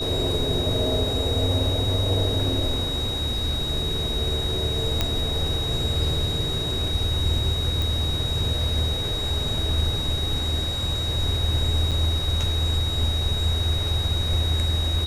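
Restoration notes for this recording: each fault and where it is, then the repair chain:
tone 3800 Hz -27 dBFS
5.01 pop -7 dBFS
7.82 pop
11.91–11.92 gap 6.4 ms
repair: de-click; notch 3800 Hz, Q 30; interpolate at 11.91, 6.4 ms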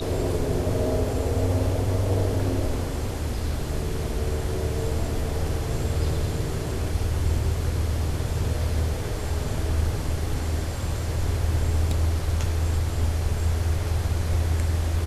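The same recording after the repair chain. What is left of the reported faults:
none

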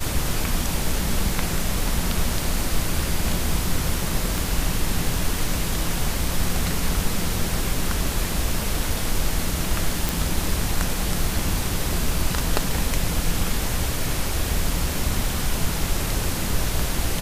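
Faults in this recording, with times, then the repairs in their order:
4.38 pop
10.09 pop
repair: de-click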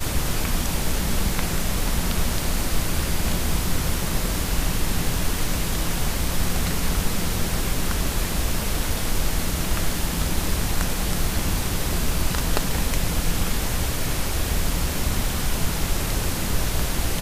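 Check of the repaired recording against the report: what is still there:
none

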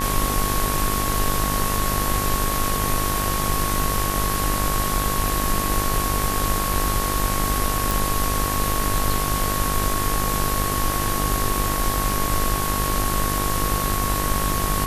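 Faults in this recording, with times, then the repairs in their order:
buzz 50 Hz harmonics 39 -27 dBFS
tone 1100 Hz -27 dBFS
7.91 pop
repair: de-click; notch 1100 Hz, Q 30; de-hum 50 Hz, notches 39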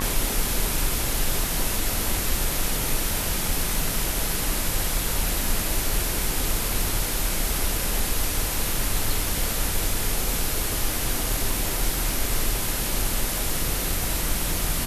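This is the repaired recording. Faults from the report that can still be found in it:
none

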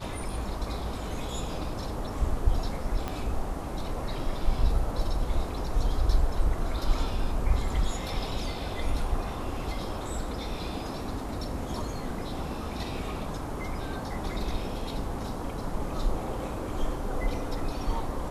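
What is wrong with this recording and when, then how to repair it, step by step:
3.08 pop -18 dBFS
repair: de-click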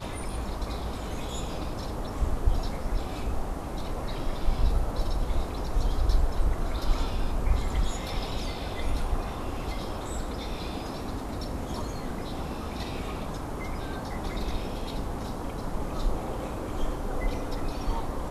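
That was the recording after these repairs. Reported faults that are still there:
3.08 pop

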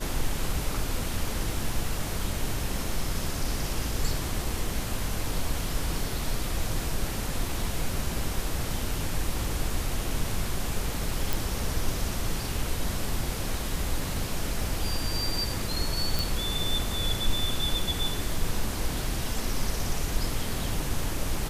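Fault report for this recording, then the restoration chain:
11.33 pop
16.19 pop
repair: de-click

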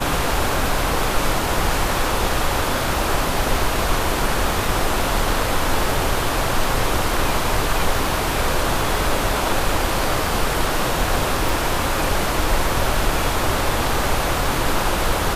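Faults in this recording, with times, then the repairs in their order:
11.49 pop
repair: de-click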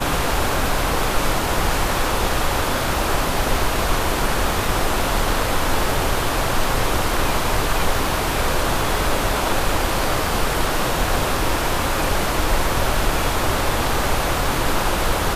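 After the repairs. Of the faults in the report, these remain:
none

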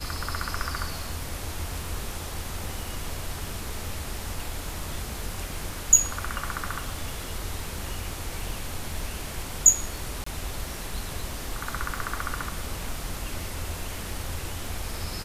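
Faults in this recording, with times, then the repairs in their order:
crackle 26/s -36 dBFS
10.24–10.26 gap 24 ms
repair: de-click; interpolate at 10.24, 24 ms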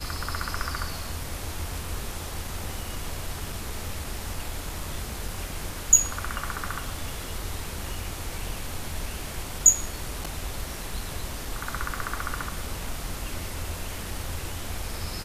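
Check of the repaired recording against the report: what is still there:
none

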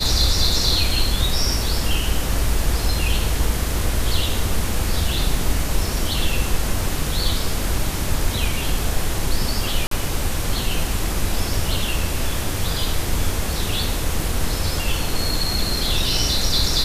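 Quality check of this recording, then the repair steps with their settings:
9.87–9.91 gap 43 ms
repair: interpolate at 9.87, 43 ms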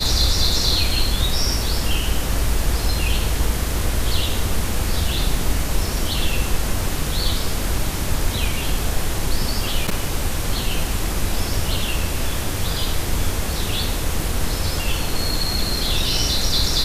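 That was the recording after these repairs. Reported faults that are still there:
none

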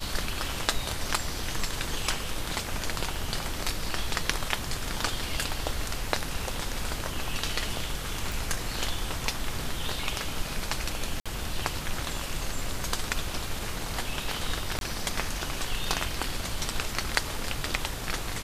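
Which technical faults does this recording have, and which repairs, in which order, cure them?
8.32 pop
11.2–11.26 gap 56 ms
14.79–14.81 gap 22 ms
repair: de-click; interpolate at 11.2, 56 ms; interpolate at 14.79, 22 ms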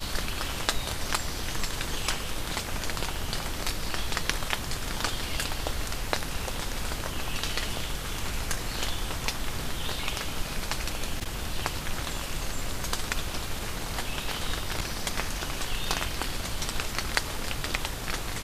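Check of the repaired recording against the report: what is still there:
none

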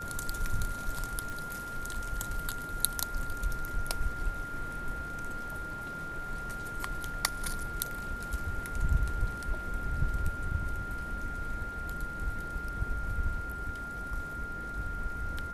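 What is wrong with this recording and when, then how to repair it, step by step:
tone 1400 Hz -38 dBFS
1.3 pop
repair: de-click; notch 1400 Hz, Q 30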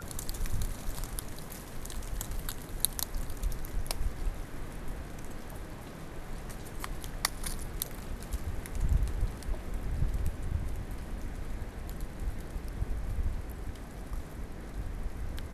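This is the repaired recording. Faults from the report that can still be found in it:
none

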